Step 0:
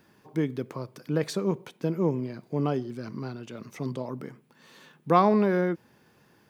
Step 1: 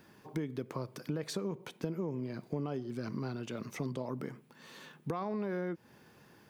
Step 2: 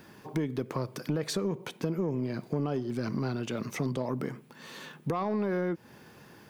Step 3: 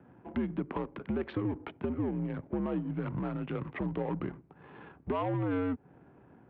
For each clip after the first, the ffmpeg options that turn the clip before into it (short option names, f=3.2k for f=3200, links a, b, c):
-af "alimiter=limit=-18dB:level=0:latency=1,acompressor=threshold=-34dB:ratio=6,volume=1dB"
-af "asoftclip=type=tanh:threshold=-26.5dB,volume=7dB"
-af "adynamicsmooth=sensitivity=6:basefreq=770,highpass=f=210:t=q:w=0.5412,highpass=f=210:t=q:w=1.307,lowpass=f=3.3k:t=q:w=0.5176,lowpass=f=3.3k:t=q:w=0.7071,lowpass=f=3.3k:t=q:w=1.932,afreqshift=-84"